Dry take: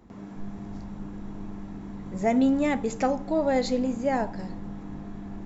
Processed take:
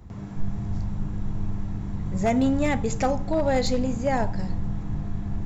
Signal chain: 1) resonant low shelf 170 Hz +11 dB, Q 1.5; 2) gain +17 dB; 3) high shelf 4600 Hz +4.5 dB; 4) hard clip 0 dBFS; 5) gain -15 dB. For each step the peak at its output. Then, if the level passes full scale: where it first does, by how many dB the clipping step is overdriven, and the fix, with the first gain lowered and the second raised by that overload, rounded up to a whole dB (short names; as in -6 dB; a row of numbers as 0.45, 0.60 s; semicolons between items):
-12.0, +5.0, +5.0, 0.0, -15.0 dBFS; step 2, 5.0 dB; step 2 +12 dB, step 5 -10 dB